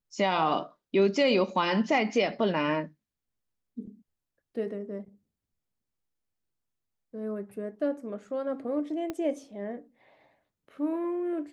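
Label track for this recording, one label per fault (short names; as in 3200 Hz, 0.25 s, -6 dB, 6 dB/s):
9.100000	9.100000	pop -20 dBFS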